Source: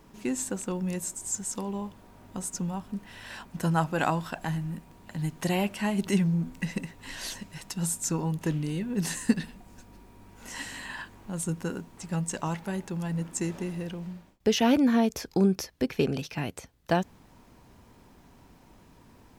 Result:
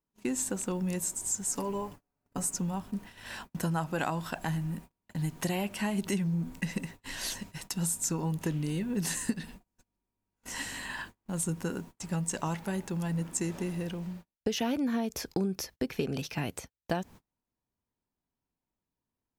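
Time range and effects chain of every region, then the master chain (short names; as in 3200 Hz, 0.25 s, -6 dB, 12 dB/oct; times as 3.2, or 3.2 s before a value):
1.47–2.53 bell 3500 Hz -8.5 dB 0.29 oct + comb 7 ms, depth 89%
whole clip: high shelf 8600 Hz +5.5 dB; gate -44 dBFS, range -35 dB; compressor 6:1, threshold -27 dBFS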